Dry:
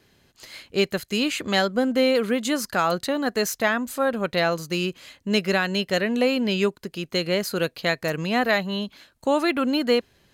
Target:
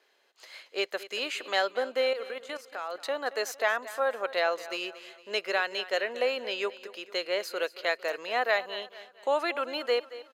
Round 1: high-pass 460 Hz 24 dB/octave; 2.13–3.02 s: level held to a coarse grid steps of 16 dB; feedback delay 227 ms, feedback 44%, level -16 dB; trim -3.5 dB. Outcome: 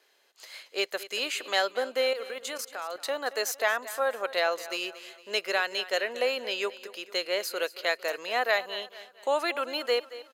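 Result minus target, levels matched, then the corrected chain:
8 kHz band +6.0 dB
high-pass 460 Hz 24 dB/octave; treble shelf 5.8 kHz -10.5 dB; 2.13–3.02 s: level held to a coarse grid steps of 16 dB; feedback delay 227 ms, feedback 44%, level -16 dB; trim -3.5 dB

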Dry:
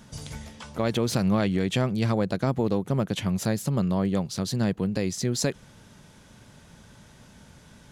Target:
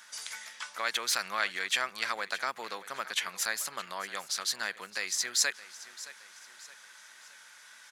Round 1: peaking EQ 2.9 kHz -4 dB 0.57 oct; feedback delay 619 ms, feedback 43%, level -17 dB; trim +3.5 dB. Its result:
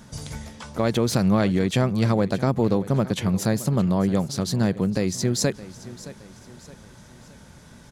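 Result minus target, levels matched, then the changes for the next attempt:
2 kHz band -13.0 dB
add first: resonant high-pass 1.6 kHz, resonance Q 1.5

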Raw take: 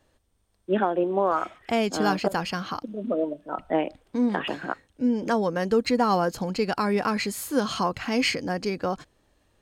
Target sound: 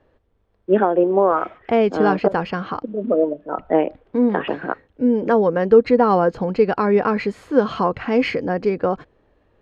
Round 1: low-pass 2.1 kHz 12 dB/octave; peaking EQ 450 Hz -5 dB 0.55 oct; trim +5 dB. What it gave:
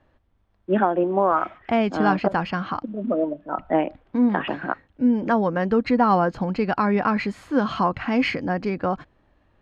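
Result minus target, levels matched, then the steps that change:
500 Hz band -3.5 dB
change: peaking EQ 450 Hz +6.5 dB 0.55 oct

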